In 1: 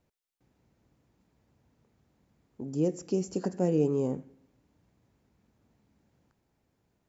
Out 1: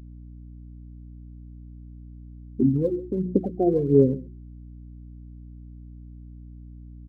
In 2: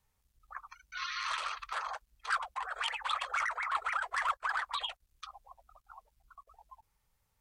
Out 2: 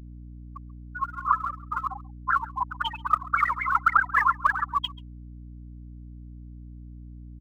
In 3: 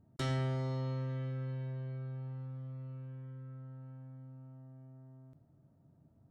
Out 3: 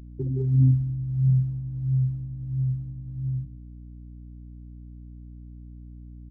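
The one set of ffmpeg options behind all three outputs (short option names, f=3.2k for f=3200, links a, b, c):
-filter_complex "[0:a]aemphasis=mode=reproduction:type=75fm,afftfilt=real='re*gte(hypot(re,im),0.0708)':imag='im*gte(hypot(re,im),0.0708)':win_size=1024:overlap=0.75,bandreject=f=60:t=h:w=6,bandreject=f=120:t=h:w=6,bandreject=f=180:t=h:w=6,bandreject=f=240:t=h:w=6,bandreject=f=300:t=h:w=6,bandreject=f=360:t=h:w=6,asplit=2[a][b];[b]acompressor=threshold=-37dB:ratio=8,volume=-3dB[c];[a][c]amix=inputs=2:normalize=0,alimiter=limit=-22.5dB:level=0:latency=1:release=368,acontrast=32,aphaser=in_gain=1:out_gain=1:delay=2.9:decay=0.66:speed=1.5:type=sinusoidal,aeval=exprs='val(0)+0.00708*(sin(2*PI*60*n/s)+sin(2*PI*2*60*n/s)/2+sin(2*PI*3*60*n/s)/3+sin(2*PI*4*60*n/s)/4+sin(2*PI*5*60*n/s)/5)':c=same,aecho=1:1:136:0.0794,volume=2dB"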